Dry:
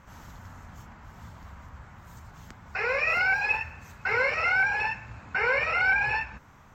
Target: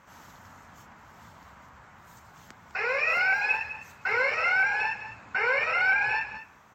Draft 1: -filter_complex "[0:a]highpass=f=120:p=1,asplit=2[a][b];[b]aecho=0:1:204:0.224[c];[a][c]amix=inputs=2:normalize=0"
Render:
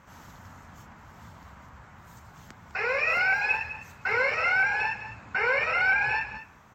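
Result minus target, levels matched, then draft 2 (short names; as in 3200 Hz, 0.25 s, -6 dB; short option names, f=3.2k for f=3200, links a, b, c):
125 Hz band +6.5 dB
-filter_complex "[0:a]highpass=f=330:p=1,asplit=2[a][b];[b]aecho=0:1:204:0.224[c];[a][c]amix=inputs=2:normalize=0"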